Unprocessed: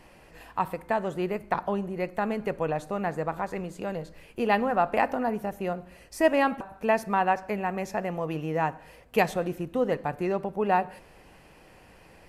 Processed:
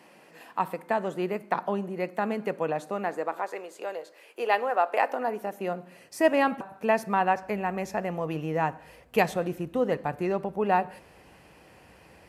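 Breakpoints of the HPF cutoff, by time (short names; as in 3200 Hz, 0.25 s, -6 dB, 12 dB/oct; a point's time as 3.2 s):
HPF 24 dB/oct
2.78 s 170 Hz
3.59 s 390 Hz
5 s 390 Hz
6.18 s 110 Hz
7.1 s 110 Hz
7.54 s 54 Hz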